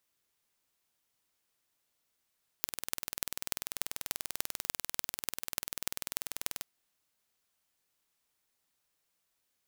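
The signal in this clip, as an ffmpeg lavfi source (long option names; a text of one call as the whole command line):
ffmpeg -f lavfi -i "aevalsrc='0.75*eq(mod(n,2162),0)*(0.5+0.5*eq(mod(n,12972),0))':duration=3.98:sample_rate=44100" out.wav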